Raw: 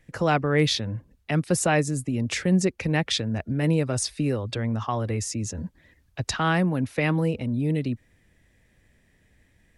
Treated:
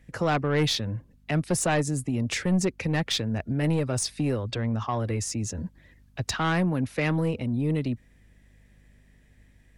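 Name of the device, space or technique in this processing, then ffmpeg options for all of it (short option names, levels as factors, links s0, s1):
valve amplifier with mains hum: -filter_complex "[0:a]aeval=exprs='(tanh(7.08*val(0)+0.15)-tanh(0.15))/7.08':c=same,aeval=exprs='val(0)+0.00141*(sin(2*PI*50*n/s)+sin(2*PI*2*50*n/s)/2+sin(2*PI*3*50*n/s)/3+sin(2*PI*4*50*n/s)/4+sin(2*PI*5*50*n/s)/5)':c=same,asettb=1/sr,asplit=3[s0][s1][s2];[s0]atrim=end=4.504[s3];[s1]atrim=start=4.5:end=4.99,asetpts=PTS-STARTPTS,afade=t=in:d=0.004:c=qsin,afade=t=out:st=0.486:d=0.004:c=qsin,lowpass=f=8400:w=0.5412,lowpass=f=8400:w=1.3066[s4];[s2]atrim=start=4.986[s5];[s3][s4]acrossfade=d=0.004:c1=hsin:c2=qsin[s6];[s6][s5]acrossfade=d=0.004:c1=qsin:c2=hsin"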